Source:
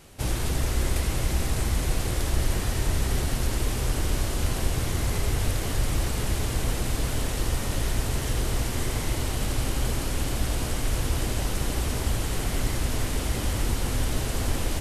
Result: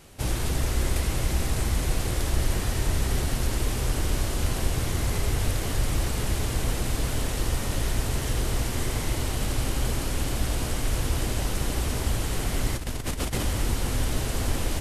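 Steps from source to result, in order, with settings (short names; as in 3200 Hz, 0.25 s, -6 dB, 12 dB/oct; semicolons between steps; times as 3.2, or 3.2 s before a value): 12.76–13.43 negative-ratio compressor -28 dBFS, ratio -0.5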